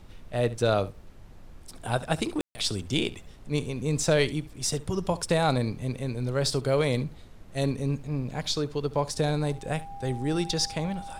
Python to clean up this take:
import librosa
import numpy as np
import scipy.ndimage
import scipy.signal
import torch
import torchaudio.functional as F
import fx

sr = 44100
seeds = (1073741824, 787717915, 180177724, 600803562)

y = fx.notch(x, sr, hz=800.0, q=30.0)
y = fx.fix_ambience(y, sr, seeds[0], print_start_s=0.91, print_end_s=1.41, start_s=2.41, end_s=2.55)
y = fx.noise_reduce(y, sr, print_start_s=0.91, print_end_s=1.41, reduce_db=28.0)
y = fx.fix_echo_inverse(y, sr, delay_ms=70, level_db=-18.5)